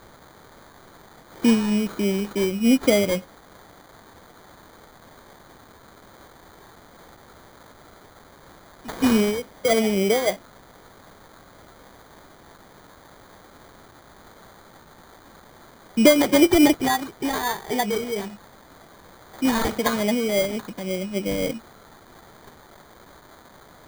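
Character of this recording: a quantiser's noise floor 8-bit, dither triangular; phasing stages 2, 3.5 Hz, lowest notch 780–1900 Hz; aliases and images of a low sample rate 2700 Hz, jitter 0%

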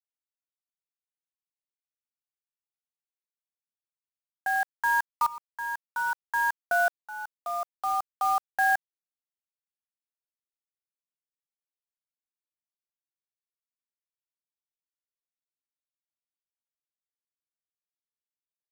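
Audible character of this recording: a quantiser's noise floor 6-bit, dither none; tremolo saw up 0.57 Hz, depth 90%

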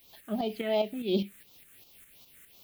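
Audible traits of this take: a quantiser's noise floor 10-bit, dither triangular; tremolo saw up 4.9 Hz, depth 55%; phasing stages 4, 2.8 Hz, lowest notch 800–1700 Hz

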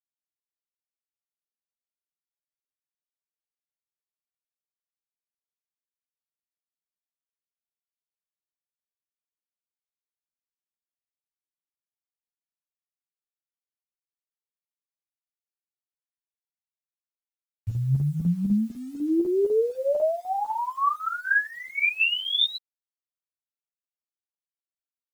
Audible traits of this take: phasing stages 6, 0.89 Hz, lowest notch 290–2200 Hz; chopped level 4 Hz, depth 60%, duty 80%; a quantiser's noise floor 10-bit, dither none; a shimmering, thickened sound

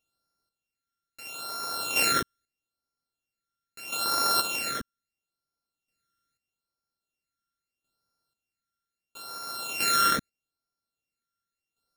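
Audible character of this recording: a buzz of ramps at a fixed pitch in blocks of 32 samples; phasing stages 12, 0.77 Hz, lowest notch 800–2800 Hz; chopped level 0.51 Hz, depth 60%, duty 25%

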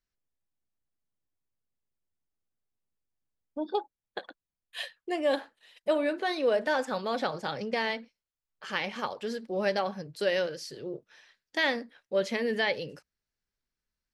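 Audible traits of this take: noise floor -91 dBFS; spectral tilt -2.0 dB/oct

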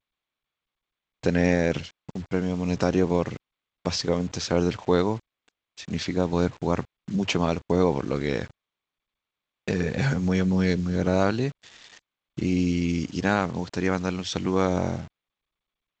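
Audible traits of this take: a quantiser's noise floor 8-bit, dither none; G.722

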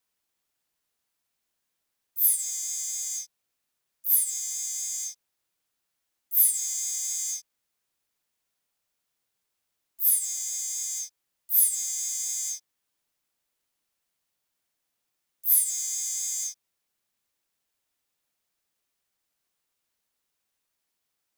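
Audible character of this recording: noise floor -81 dBFS; spectral tilt +7.5 dB/oct

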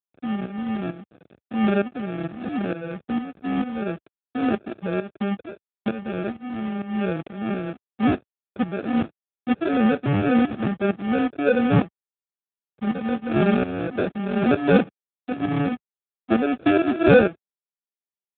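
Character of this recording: a quantiser's noise floor 8-bit, dither none; tremolo saw up 2.2 Hz, depth 75%; aliases and images of a low sample rate 1000 Hz, jitter 0%; AMR-NB

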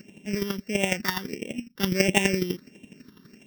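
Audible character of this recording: a buzz of ramps at a fixed pitch in blocks of 16 samples; chopped level 12 Hz, depth 65%, duty 15%; phasing stages 6, 1.5 Hz, lowest notch 640–1300 Hz

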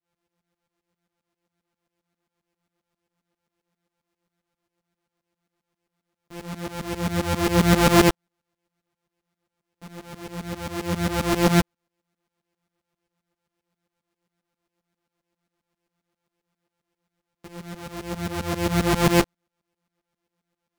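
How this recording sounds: a buzz of ramps at a fixed pitch in blocks of 256 samples; tremolo saw up 7.5 Hz, depth 95%; a shimmering, thickened sound

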